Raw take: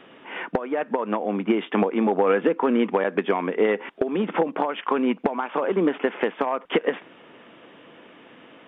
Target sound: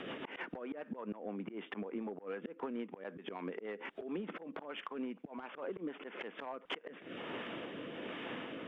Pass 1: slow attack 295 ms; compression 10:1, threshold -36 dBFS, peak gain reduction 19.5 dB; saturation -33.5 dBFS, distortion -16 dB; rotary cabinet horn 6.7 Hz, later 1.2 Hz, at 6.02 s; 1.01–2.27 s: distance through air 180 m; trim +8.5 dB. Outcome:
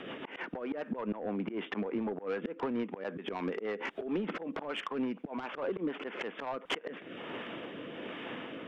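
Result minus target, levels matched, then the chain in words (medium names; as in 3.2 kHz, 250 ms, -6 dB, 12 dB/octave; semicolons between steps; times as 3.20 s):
compression: peak gain reduction -8.5 dB
slow attack 295 ms; compression 10:1, threshold -45.5 dBFS, peak gain reduction 28 dB; saturation -33.5 dBFS, distortion -29 dB; rotary cabinet horn 6.7 Hz, later 1.2 Hz, at 6.02 s; 1.01–2.27 s: distance through air 180 m; trim +8.5 dB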